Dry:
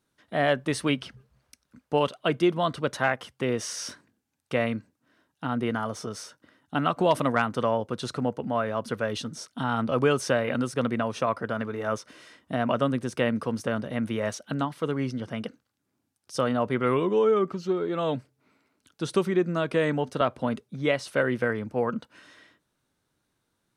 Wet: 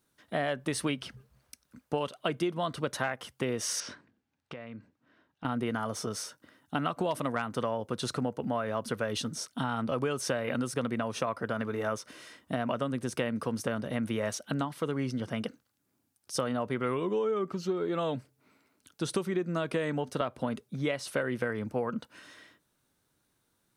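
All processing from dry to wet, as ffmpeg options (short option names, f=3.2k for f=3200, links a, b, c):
-filter_complex "[0:a]asettb=1/sr,asplit=3[a][b][c];[a]atrim=end=3.804[d];[b]atrim=start=3.8:end=5.45,asetpts=PTS-STARTPTS,afade=t=in:d=0.004:c=qsin,afade=t=out:st=1.646:d=0.004:c=qsin,lowpass=3.4k,acompressor=threshold=-38dB:ratio=16:attack=3.2:release=140:knee=1:detection=peak[e];[c]atrim=start=5.446[f];[d][e]acrossfade=d=0.004:c1=hsin:c2=qsin[g];[g][f]acrossfade=d=0.004:c1=qsin:c2=hsin,acompressor=threshold=-27dB:ratio=6,highshelf=f=9.8k:g=10"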